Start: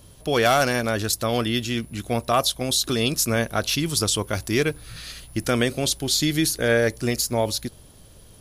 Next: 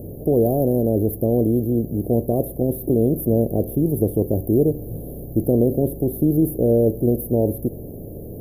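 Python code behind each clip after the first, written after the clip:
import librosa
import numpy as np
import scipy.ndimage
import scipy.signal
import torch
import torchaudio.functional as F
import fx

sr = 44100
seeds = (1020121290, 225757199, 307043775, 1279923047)

y = fx.bin_compress(x, sr, power=0.6)
y = scipy.signal.sosfilt(scipy.signal.cheby2(4, 50, [1200.0, 7800.0], 'bandstop', fs=sr, output='sos'), y)
y = F.gain(torch.from_numpy(y), 4.0).numpy()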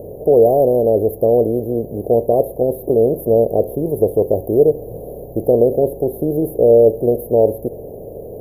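y = fx.band_shelf(x, sr, hz=670.0, db=13.5, octaves=1.7)
y = F.gain(torch.from_numpy(y), -4.0).numpy()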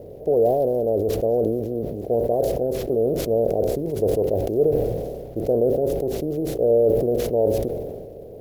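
y = scipy.ndimage.median_filter(x, 3, mode='constant')
y = fx.sustainer(y, sr, db_per_s=32.0)
y = F.gain(torch.from_numpy(y), -8.0).numpy()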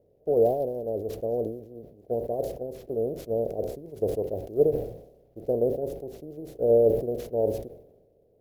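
y = fx.upward_expand(x, sr, threshold_db=-31.0, expansion=2.5)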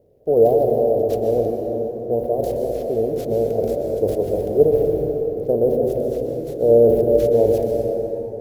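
y = fx.rev_plate(x, sr, seeds[0], rt60_s=3.8, hf_ratio=0.45, predelay_ms=110, drr_db=1.0)
y = F.gain(torch.from_numpy(y), 6.5).numpy()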